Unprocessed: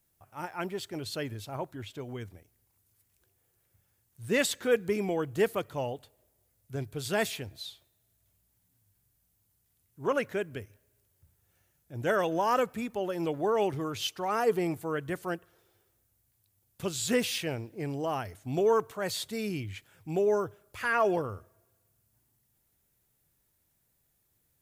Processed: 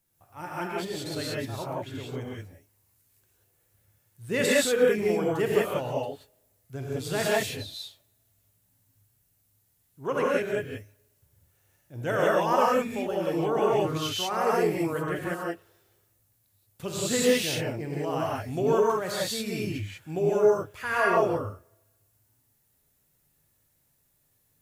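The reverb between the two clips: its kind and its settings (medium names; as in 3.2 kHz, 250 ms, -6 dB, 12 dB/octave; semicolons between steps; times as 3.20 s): gated-style reverb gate 210 ms rising, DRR -5 dB; trim -2 dB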